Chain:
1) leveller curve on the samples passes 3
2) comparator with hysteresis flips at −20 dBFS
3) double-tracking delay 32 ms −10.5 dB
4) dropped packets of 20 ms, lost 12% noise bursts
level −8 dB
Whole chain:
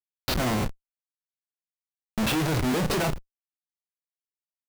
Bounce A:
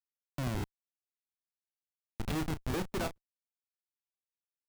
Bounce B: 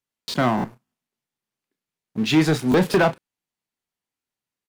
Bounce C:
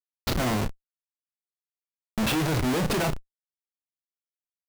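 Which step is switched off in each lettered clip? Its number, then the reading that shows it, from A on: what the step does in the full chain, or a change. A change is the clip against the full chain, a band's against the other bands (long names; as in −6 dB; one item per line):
1, change in integrated loudness −11.0 LU
2, 8 kHz band −7.5 dB
4, change in crest factor −3.5 dB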